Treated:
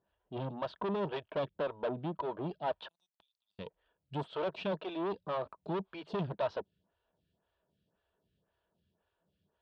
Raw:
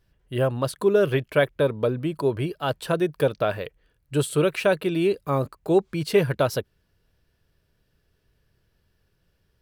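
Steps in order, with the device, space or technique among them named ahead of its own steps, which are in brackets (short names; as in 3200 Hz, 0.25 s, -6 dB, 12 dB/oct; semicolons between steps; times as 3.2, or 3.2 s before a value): 2.88–3.59 inverse Chebyshev high-pass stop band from 1600 Hz, stop band 70 dB; vibe pedal into a guitar amplifier (photocell phaser 1.9 Hz; tube stage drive 29 dB, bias 0.55; speaker cabinet 78–3900 Hz, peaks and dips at 120 Hz -5 dB, 190 Hz +6 dB, 650 Hz +8 dB, 940 Hz +8 dB, 2100 Hz -7 dB, 3400 Hz +5 dB); gain -4.5 dB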